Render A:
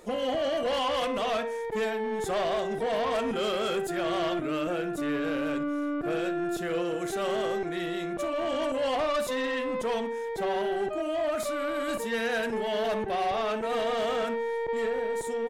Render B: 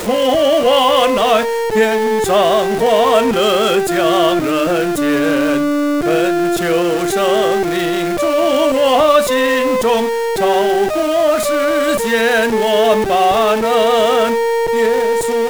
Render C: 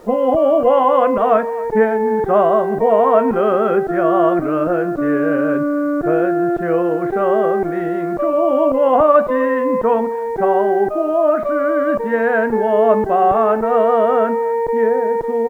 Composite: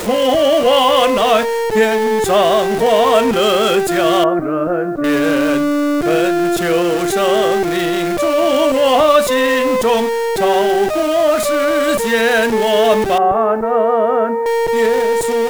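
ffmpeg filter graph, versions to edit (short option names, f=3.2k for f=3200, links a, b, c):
-filter_complex "[2:a]asplit=2[a][b];[1:a]asplit=3[c][d][e];[c]atrim=end=4.242[f];[a]atrim=start=4.238:end=5.042[g];[d]atrim=start=5.038:end=13.182[h];[b]atrim=start=13.178:end=14.462[i];[e]atrim=start=14.458[j];[f][g]acrossfade=d=0.004:c1=hsin:c2=hsin[k];[k][h]acrossfade=d=0.004:c1=hsin:c2=hsin[l];[l][i]acrossfade=d=0.004:c1=hsin:c2=hsin[m];[m][j]acrossfade=d=0.004:c1=hsin:c2=hsin"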